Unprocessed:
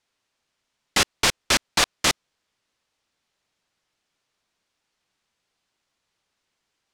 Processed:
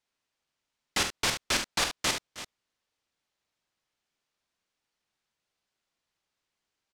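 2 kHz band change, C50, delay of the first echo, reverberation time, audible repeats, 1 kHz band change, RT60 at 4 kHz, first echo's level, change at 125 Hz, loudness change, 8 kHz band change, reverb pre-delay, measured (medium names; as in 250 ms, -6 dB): -7.0 dB, no reverb, 45 ms, no reverb, 2, -7.0 dB, no reverb, -9.5 dB, -7.0 dB, -7.0 dB, -7.0 dB, no reverb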